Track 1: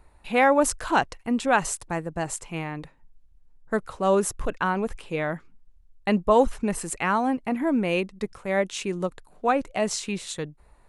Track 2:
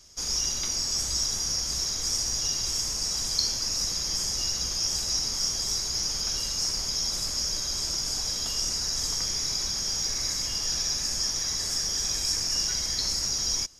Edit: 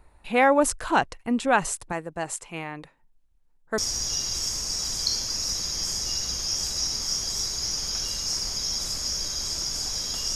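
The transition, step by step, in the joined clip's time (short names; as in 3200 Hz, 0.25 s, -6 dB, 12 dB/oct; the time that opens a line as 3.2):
track 1
1.92–3.78 low shelf 240 Hz -10 dB
3.78 switch to track 2 from 2.1 s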